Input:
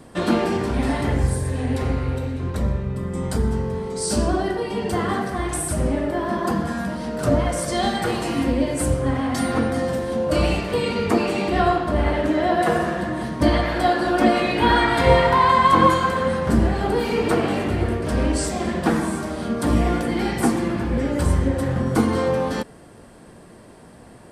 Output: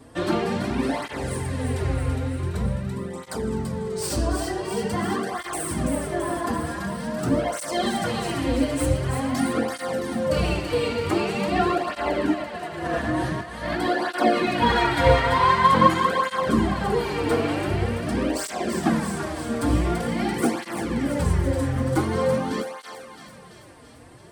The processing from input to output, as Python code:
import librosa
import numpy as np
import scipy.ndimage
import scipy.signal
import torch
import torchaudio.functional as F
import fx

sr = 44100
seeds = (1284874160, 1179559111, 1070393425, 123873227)

p1 = fx.tracing_dist(x, sr, depth_ms=0.033)
p2 = fx.over_compress(p1, sr, threshold_db=-25.0, ratio=-0.5, at=(12.33, 13.8))
p3 = p2 + fx.echo_thinned(p2, sr, ms=335, feedback_pct=65, hz=860.0, wet_db=-6.0, dry=0)
y = fx.flanger_cancel(p3, sr, hz=0.46, depth_ms=5.7)